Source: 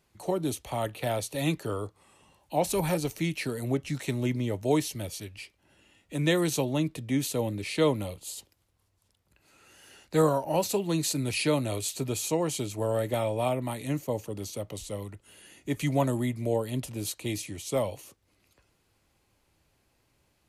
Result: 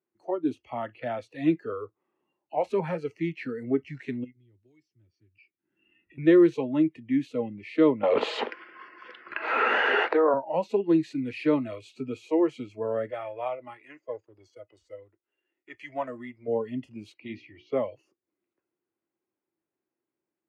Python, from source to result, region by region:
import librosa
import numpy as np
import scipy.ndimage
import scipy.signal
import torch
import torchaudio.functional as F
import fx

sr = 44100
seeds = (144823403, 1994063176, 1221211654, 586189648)

y = fx.chain(x, sr, fx.tone_stack(knobs='6-0-2'),
    fx.band_squash(depth_pct=100), at=(4.24, 6.18))
y = fx.chain(y, sr, fx.bandpass_edges(low_hz=370.0, high_hz=2600.0),
    fx.env_flatten(amount_pct=100), at=(8.03, 10.34))
y = fx.chain(y, sr, fx.law_mismatch(coded='A'),
    fx.peak_eq(hz=180.0, db=-13.5, octaves=1.4), at=(13.11, 16.48))
y = fx.chain(y, sr, fx.lowpass(hz=4800.0, slope=24),
    fx.hum_notches(base_hz=60, count=8), at=(17.14, 17.74))
y = fx.noise_reduce_blind(y, sr, reduce_db=19)
y = scipy.signal.sosfilt(scipy.signal.cheby1(2, 1.0, [210.0, 1800.0], 'bandpass', fs=sr, output='sos'), y)
y = fx.peak_eq(y, sr, hz=350.0, db=13.5, octaves=0.43)